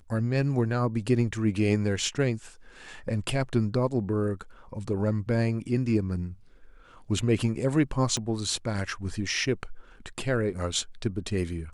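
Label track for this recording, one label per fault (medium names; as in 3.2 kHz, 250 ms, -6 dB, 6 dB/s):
8.170000	8.170000	pop -17 dBFS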